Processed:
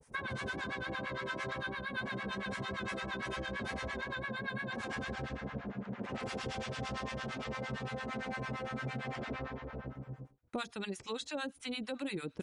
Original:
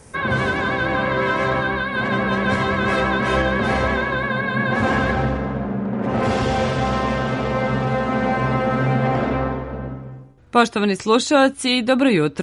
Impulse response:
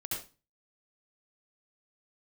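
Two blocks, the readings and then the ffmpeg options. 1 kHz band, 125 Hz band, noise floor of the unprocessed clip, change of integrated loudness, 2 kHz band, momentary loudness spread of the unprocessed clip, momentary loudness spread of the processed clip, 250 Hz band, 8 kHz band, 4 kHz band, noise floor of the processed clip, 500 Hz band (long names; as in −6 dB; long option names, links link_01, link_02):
−21.0 dB, −20.0 dB, −38 dBFS, −20.0 dB, −17.5 dB, 7 LU, 4 LU, −21.0 dB, −17.5 dB, −16.5 dB, −60 dBFS, −21.5 dB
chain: -filter_complex "[0:a]acrossover=split=1700|4100[link_01][link_02][link_03];[link_01]acompressor=threshold=-32dB:ratio=4[link_04];[link_02]acompressor=threshold=-38dB:ratio=4[link_05];[link_03]acompressor=threshold=-44dB:ratio=4[link_06];[link_04][link_05][link_06]amix=inputs=3:normalize=0,acrossover=split=790[link_07][link_08];[link_07]aeval=exprs='val(0)*(1-1/2+1/2*cos(2*PI*8.8*n/s))':channel_layout=same[link_09];[link_08]aeval=exprs='val(0)*(1-1/2-1/2*cos(2*PI*8.8*n/s))':channel_layout=same[link_10];[link_09][link_10]amix=inputs=2:normalize=0,agate=range=-33dB:threshold=-43dB:ratio=3:detection=peak,volume=-4dB"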